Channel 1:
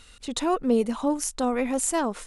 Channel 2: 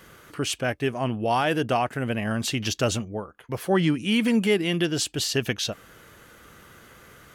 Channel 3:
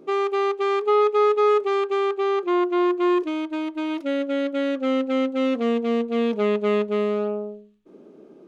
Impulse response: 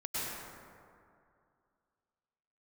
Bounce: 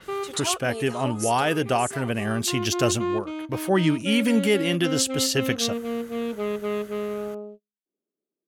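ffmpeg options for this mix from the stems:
-filter_complex "[0:a]highpass=610,aecho=1:1:7.5:0.55,volume=-2dB,afade=t=out:st=1.01:d=0.5:silence=0.281838,asplit=2[a][b];[1:a]volume=0.5dB[c];[2:a]agate=range=-36dB:threshold=-35dB:ratio=16:detection=peak,volume=-6.5dB[d];[b]apad=whole_len=373552[e];[d][e]sidechaincompress=threshold=-46dB:ratio=8:attack=16:release=896[f];[a][c][f]amix=inputs=3:normalize=0,adynamicequalizer=threshold=0.00708:dfrequency=5600:dqfactor=0.7:tfrequency=5600:tqfactor=0.7:attack=5:release=100:ratio=0.375:range=2.5:mode=boostabove:tftype=highshelf"

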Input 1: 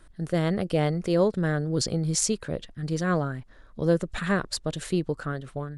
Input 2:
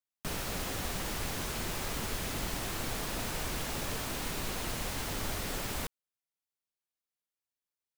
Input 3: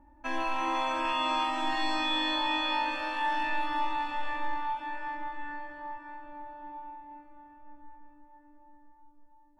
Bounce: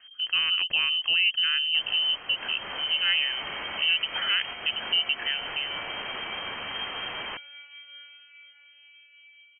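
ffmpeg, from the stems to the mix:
-filter_complex "[0:a]equalizer=f=7.8k:w=1.5:g=5,alimiter=limit=-16.5dB:level=0:latency=1,volume=1dB,asplit=2[a][b];[1:a]crystalizer=i=3.5:c=0,tiltshelf=f=970:g=-3.5,adelay=1500,volume=1dB[c];[2:a]equalizer=f=1.8k:t=o:w=1:g=-3.5,adelay=2500,volume=-11dB[d];[b]apad=whole_len=417830[e];[c][e]sidechaincompress=threshold=-32dB:ratio=8:attack=28:release=181[f];[a][f][d]amix=inputs=3:normalize=0,lowpass=f=2.7k:t=q:w=0.5098,lowpass=f=2.7k:t=q:w=0.6013,lowpass=f=2.7k:t=q:w=0.9,lowpass=f=2.7k:t=q:w=2.563,afreqshift=-3200"

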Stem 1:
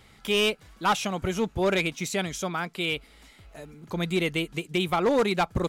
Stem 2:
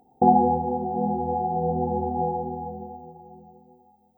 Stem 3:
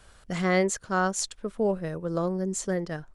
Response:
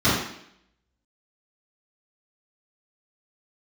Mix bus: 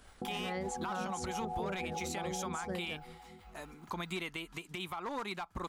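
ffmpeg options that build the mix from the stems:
-filter_complex "[0:a]agate=range=-33dB:threshold=-46dB:ratio=3:detection=peak,equalizer=f=125:t=o:w=1:g=-11,equalizer=f=500:t=o:w=1:g=-9,equalizer=f=1k:t=o:w=1:g=9,acompressor=threshold=-33dB:ratio=12,volume=-1dB[a];[1:a]acrossover=split=630[b][c];[b]aeval=exprs='val(0)*(1-1/2+1/2*cos(2*PI*4.8*n/s))':c=same[d];[c]aeval=exprs='val(0)*(1-1/2-1/2*cos(2*PI*4.8*n/s))':c=same[e];[d][e]amix=inputs=2:normalize=0,acompressor=threshold=-30dB:ratio=6,volume=-4.5dB[f];[2:a]agate=range=-33dB:threshold=-45dB:ratio=3:detection=peak,acompressor=mode=upward:threshold=-30dB:ratio=2.5,volume=-12.5dB[g];[a][f][g]amix=inputs=3:normalize=0,alimiter=level_in=4dB:limit=-24dB:level=0:latency=1:release=90,volume=-4dB"

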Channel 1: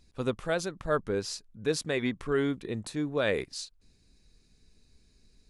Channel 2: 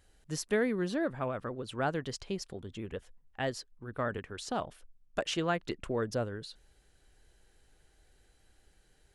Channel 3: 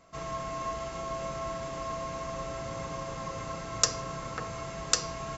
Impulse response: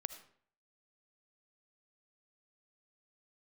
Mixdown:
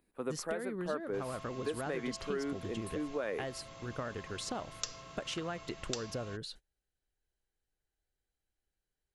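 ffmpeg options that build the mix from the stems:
-filter_complex "[0:a]acrossover=split=210 2400:gain=0.0891 1 0.0794[a][b][c];[a][b][c]amix=inputs=3:normalize=0,aexciter=amount=14.9:drive=6.3:freq=8.8k,volume=-3dB[d];[1:a]agate=range=-26dB:threshold=-52dB:ratio=16:detection=peak,acompressor=threshold=-38dB:ratio=5,volume=2.5dB[e];[2:a]equalizer=f=3.3k:t=o:w=1.3:g=10,adelay=1000,volume=-15dB[f];[d][e][f]amix=inputs=3:normalize=0,acompressor=threshold=-32dB:ratio=6"

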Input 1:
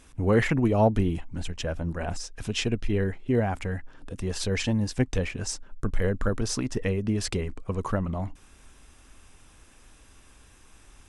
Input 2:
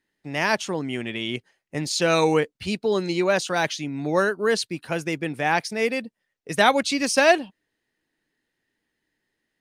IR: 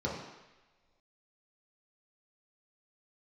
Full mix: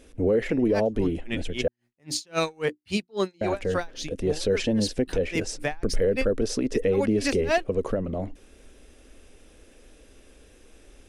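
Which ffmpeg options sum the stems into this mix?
-filter_complex "[0:a]equalizer=f=125:t=o:w=1:g=-8,equalizer=f=250:t=o:w=1:g=3,equalizer=f=500:t=o:w=1:g=12,equalizer=f=1k:t=o:w=1:g=-11,equalizer=f=8k:t=o:w=1:g=-5,alimiter=limit=-11.5dB:level=0:latency=1:release=424,volume=1.5dB,asplit=3[a][b][c];[a]atrim=end=1.68,asetpts=PTS-STARTPTS,afade=t=out:st=1.676:d=0.004:c=hsin[d];[b]atrim=start=1.68:end=3.41,asetpts=PTS-STARTPTS,volume=0[e];[c]atrim=start=3.41,asetpts=PTS-STARTPTS,afade=t=in:d=0.004:c=hsin[f];[d][e][f]concat=n=3:v=0:a=1,asplit=2[g][h];[1:a]bandreject=f=60:t=h:w=6,bandreject=f=120:t=h:w=6,bandreject=f=180:t=h:w=6,bandreject=f=240:t=h:w=6,bandreject=f=300:t=h:w=6,bandreject=f=360:t=h:w=6,asoftclip=type=tanh:threshold=-9.5dB,aeval=exprs='val(0)*pow(10,-37*(0.5-0.5*cos(2*PI*3.7*n/s))/20)':c=same,adelay=250,volume=2.5dB[i];[h]apad=whole_len=434755[j];[i][j]sidechaincompress=threshold=-26dB:ratio=4:attack=28:release=105[k];[g][k]amix=inputs=2:normalize=0,alimiter=limit=-14.5dB:level=0:latency=1:release=69"

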